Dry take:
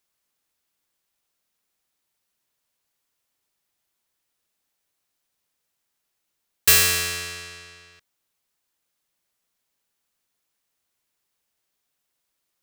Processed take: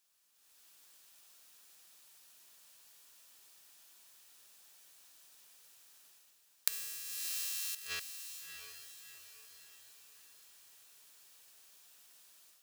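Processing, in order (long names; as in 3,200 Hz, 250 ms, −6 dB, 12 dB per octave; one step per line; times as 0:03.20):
0:06.72–0:07.75: spike at every zero crossing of −13.5 dBFS
spectral tilt +2.5 dB per octave
gate with flip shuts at −23 dBFS, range −33 dB
automatic gain control gain up to 14 dB
high-shelf EQ 11,000 Hz −7 dB
notch filter 2,100 Hz, Q 12
feedback delay with all-pass diffusion 685 ms, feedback 46%, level −8.5 dB
level −2.5 dB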